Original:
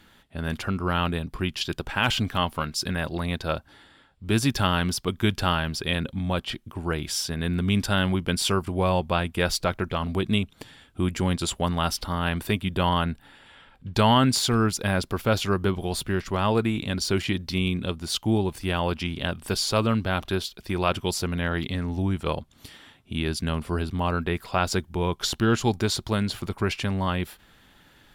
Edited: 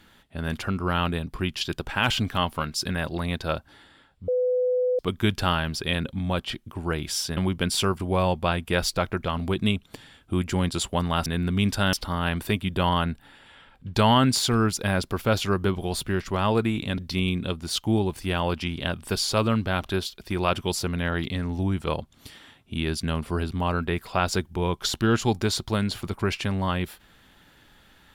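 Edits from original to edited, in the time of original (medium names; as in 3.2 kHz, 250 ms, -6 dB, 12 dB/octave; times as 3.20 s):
4.28–4.99 s: bleep 501 Hz -20 dBFS
7.37–8.04 s: move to 11.93 s
16.98–17.37 s: delete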